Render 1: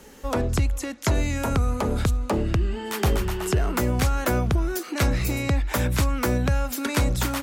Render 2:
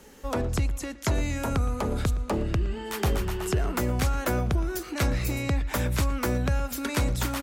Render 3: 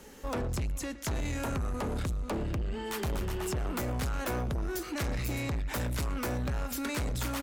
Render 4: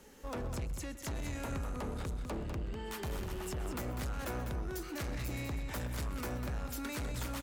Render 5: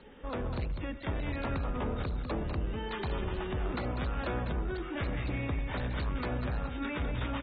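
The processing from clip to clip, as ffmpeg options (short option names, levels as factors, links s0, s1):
-filter_complex "[0:a]asplit=2[s0][s1];[s1]adelay=116,lowpass=f=3300:p=1,volume=0.141,asplit=2[s2][s3];[s3]adelay=116,lowpass=f=3300:p=1,volume=0.41,asplit=2[s4][s5];[s5]adelay=116,lowpass=f=3300:p=1,volume=0.41[s6];[s0][s2][s4][s6]amix=inputs=4:normalize=0,volume=0.668"
-af "asoftclip=type=tanh:threshold=0.0355"
-af "aecho=1:1:129|199:0.106|0.422,volume=0.473"
-af "volume=1.58" -ar 32000 -c:a aac -b:a 16k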